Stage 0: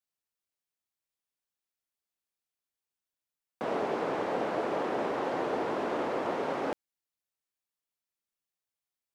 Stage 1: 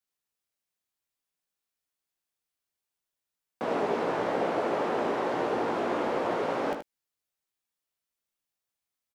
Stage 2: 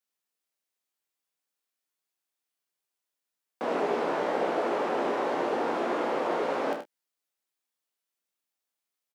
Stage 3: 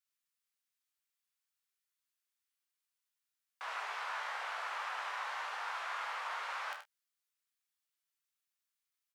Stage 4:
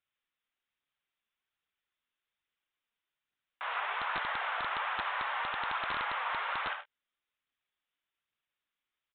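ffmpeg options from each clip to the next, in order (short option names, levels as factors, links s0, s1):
-filter_complex "[0:a]asplit=2[s0][s1];[s1]adelay=17,volume=0.398[s2];[s0][s2]amix=inputs=2:normalize=0,aecho=1:1:77:0.422,volume=1.19"
-filter_complex "[0:a]highpass=210,asplit=2[s0][s1];[s1]adelay=29,volume=0.355[s2];[s0][s2]amix=inputs=2:normalize=0"
-af "highpass=f=1100:w=0.5412,highpass=f=1100:w=1.3066,volume=0.75"
-af "aphaser=in_gain=1:out_gain=1:delay=4.4:decay=0.29:speed=1.2:type=triangular,aresample=8000,aeval=exprs='(mod(31.6*val(0)+1,2)-1)/31.6':c=same,aresample=44100,volume=1.88"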